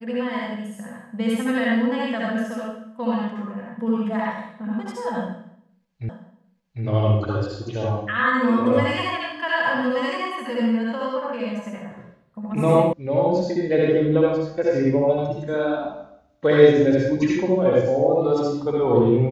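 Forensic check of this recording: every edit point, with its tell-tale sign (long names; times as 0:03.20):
0:06.09: the same again, the last 0.75 s
0:12.93: cut off before it has died away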